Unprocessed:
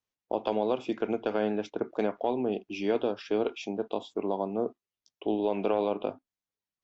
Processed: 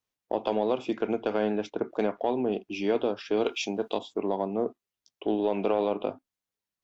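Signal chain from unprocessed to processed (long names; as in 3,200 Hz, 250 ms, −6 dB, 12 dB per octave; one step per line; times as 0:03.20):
0:03.37–0:03.99: high-shelf EQ 2,200 Hz +10.5 dB
in parallel at −10.5 dB: soft clipping −25 dBFS, distortion −10 dB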